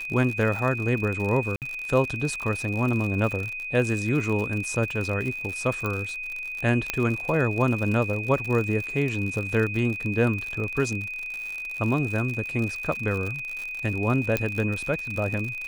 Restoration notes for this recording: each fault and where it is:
crackle 77/s -29 dBFS
tone 2500 Hz -31 dBFS
1.56–1.62 gap 58 ms
5.86 pop -15 dBFS
6.9 pop -8 dBFS
14.37 pop -10 dBFS

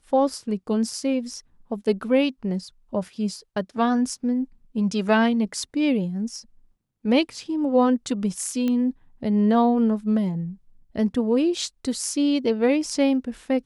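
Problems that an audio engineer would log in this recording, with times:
8.68 pop -15 dBFS

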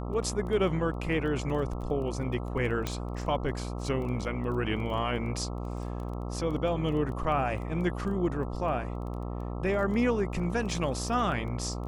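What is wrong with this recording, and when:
buzz 60 Hz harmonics 22 -35 dBFS
crackle 12/s -37 dBFS
2.87 pop -16 dBFS

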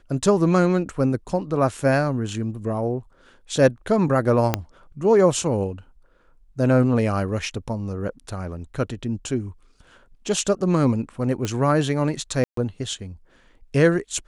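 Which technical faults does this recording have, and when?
4.54 pop -5 dBFS
11.45 pop -12 dBFS
12.44–12.57 gap 0.133 s

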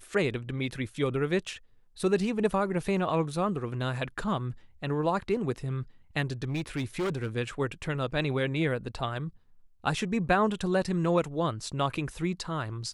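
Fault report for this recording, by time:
6.43–7.37 clipped -26.5 dBFS

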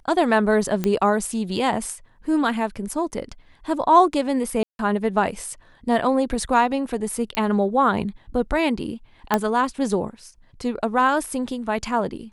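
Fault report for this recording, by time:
0.84 pop -10 dBFS
4.63–4.79 gap 0.161 s
7.35 pop -8 dBFS
9.34 pop -5 dBFS

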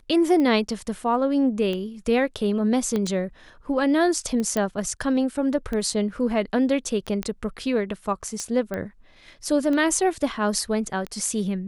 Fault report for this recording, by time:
tick 45 rpm -17 dBFS
2.96 pop -14 dBFS
4.57 pop -12 dBFS
7.23 pop -14 dBFS
8.74 pop -17 dBFS

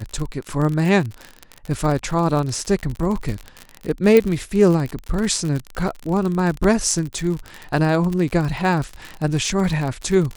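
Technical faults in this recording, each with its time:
crackle 53/s -23 dBFS
4.17 pop -4 dBFS
6.64 gap 2.6 ms

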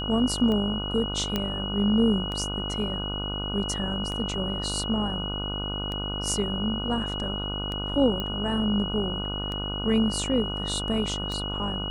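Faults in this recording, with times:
buzz 50 Hz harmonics 30 -33 dBFS
tick 33 1/3 rpm -20 dBFS
tone 2900 Hz -32 dBFS
1.36 pop -12 dBFS
8.2 pop -17 dBFS

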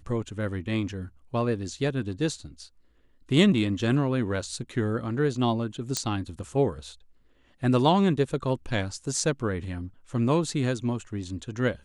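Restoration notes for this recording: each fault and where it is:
5.97 pop -12 dBFS

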